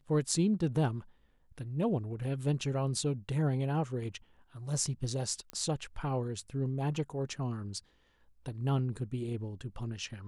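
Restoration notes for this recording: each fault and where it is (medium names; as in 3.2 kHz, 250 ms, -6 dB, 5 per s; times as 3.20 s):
5.50 s: pop -24 dBFS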